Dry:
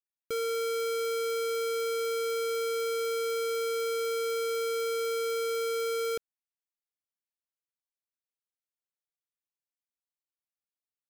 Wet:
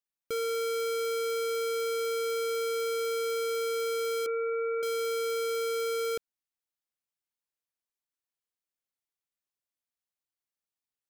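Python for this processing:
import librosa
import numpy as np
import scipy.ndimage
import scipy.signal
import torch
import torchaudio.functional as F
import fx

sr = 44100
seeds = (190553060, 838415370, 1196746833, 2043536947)

y = fx.sine_speech(x, sr, at=(4.26, 4.83))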